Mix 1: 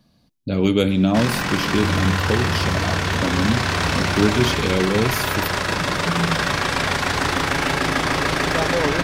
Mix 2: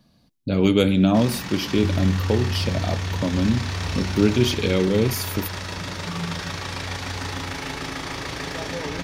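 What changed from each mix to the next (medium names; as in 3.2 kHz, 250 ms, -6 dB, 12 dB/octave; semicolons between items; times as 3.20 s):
first sound -12.0 dB; reverb: on, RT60 1.0 s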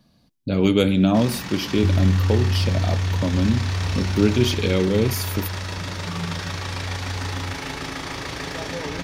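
second sound +5.0 dB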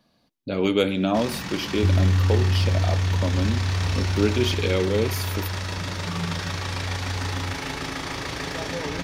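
speech: add tone controls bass -11 dB, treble -5 dB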